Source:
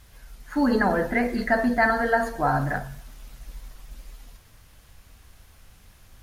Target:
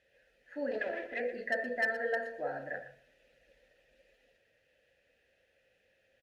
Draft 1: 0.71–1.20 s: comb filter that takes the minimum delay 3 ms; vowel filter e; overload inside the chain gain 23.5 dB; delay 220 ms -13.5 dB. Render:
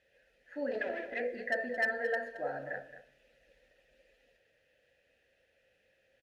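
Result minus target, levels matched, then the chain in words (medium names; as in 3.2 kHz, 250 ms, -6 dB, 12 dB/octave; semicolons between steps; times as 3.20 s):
echo 102 ms late
0.71–1.20 s: comb filter that takes the minimum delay 3 ms; vowel filter e; overload inside the chain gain 23.5 dB; delay 118 ms -13.5 dB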